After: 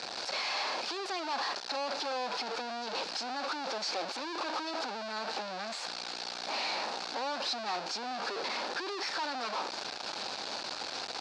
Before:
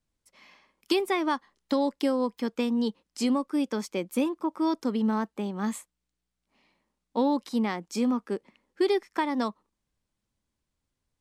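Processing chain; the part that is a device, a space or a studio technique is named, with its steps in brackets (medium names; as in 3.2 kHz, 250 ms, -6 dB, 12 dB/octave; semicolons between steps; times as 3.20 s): home computer beeper (one-bit comparator; cabinet simulation 640–4900 Hz, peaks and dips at 770 Hz +5 dB, 1.1 kHz -5 dB, 2 kHz -9 dB, 3.1 kHz -7 dB, 4.5 kHz +6 dB)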